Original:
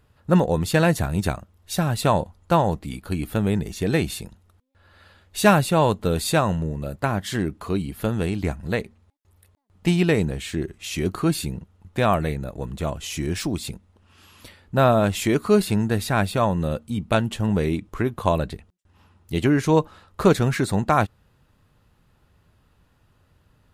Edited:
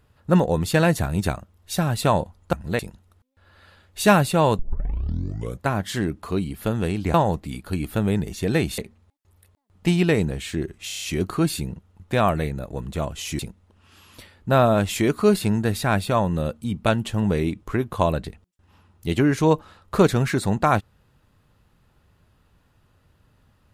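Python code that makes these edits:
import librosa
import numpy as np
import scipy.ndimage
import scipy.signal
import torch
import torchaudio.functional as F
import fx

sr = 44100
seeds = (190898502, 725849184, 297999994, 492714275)

y = fx.edit(x, sr, fx.swap(start_s=2.53, length_s=1.64, other_s=8.52, other_length_s=0.26),
    fx.tape_start(start_s=5.97, length_s=1.07),
    fx.stutter(start_s=10.87, slice_s=0.03, count=6),
    fx.cut(start_s=13.24, length_s=0.41), tone=tone)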